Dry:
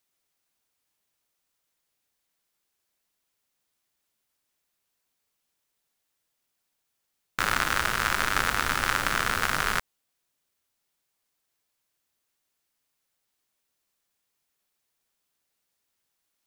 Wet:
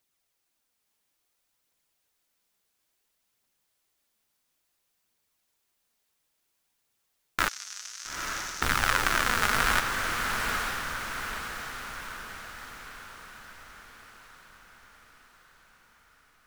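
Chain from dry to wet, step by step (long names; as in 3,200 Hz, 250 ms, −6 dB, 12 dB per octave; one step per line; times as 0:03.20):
0:07.48–0:08.62: resonant band-pass 6,000 Hz, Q 4
phase shifter 0.58 Hz, delay 5 ms, feedback 36%
feedback delay with all-pass diffusion 907 ms, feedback 53%, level −4 dB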